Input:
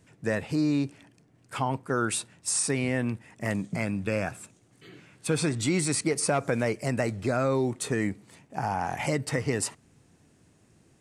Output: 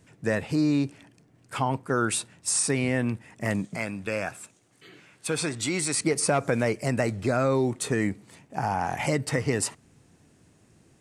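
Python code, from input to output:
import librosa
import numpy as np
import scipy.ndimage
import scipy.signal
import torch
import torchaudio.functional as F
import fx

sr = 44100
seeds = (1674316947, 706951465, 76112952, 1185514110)

y = fx.low_shelf(x, sr, hz=330.0, db=-9.5, at=(3.65, 5.99))
y = y * 10.0 ** (2.0 / 20.0)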